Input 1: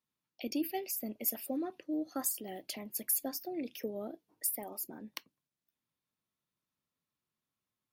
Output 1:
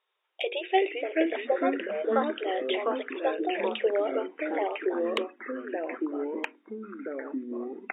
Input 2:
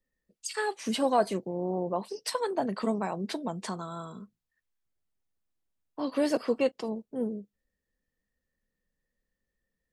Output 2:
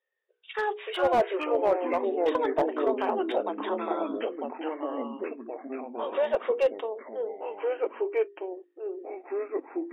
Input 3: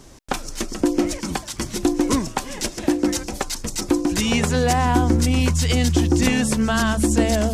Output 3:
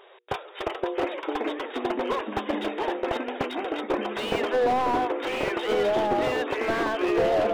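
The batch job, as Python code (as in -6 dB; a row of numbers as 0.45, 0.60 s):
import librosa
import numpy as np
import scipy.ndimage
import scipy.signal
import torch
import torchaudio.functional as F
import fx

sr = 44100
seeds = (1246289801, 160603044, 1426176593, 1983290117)

y = fx.brickwall_bandpass(x, sr, low_hz=360.0, high_hz=3800.0)
y = fx.dynamic_eq(y, sr, hz=2300.0, q=1.3, threshold_db=-43.0, ratio=4.0, max_db=-4)
y = fx.hum_notches(y, sr, base_hz=60, count=8)
y = fx.echo_pitch(y, sr, ms=293, semitones=-3, count=3, db_per_echo=-3.0)
y = fx.slew_limit(y, sr, full_power_hz=59.0)
y = librosa.util.normalize(y) * 10.0 ** (-12 / 20.0)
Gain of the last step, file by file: +15.0, +3.5, +1.0 dB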